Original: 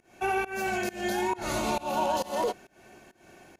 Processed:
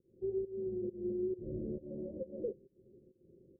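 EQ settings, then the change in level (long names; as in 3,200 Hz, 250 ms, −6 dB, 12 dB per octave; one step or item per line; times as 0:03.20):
Chebyshev low-pass with heavy ripple 540 Hz, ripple 6 dB
−3.0 dB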